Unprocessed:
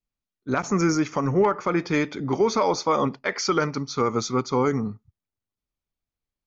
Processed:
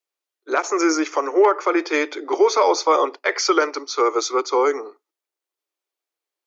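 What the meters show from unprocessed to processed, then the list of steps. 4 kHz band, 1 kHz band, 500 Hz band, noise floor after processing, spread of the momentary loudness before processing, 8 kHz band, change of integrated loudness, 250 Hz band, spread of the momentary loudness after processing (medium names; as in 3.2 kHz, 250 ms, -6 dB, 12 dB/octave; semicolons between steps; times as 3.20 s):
+5.5 dB, +5.5 dB, +5.5 dB, under -85 dBFS, 6 LU, no reading, +4.5 dB, 0.0 dB, 6 LU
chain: steep high-pass 320 Hz 72 dB/octave; trim +5.5 dB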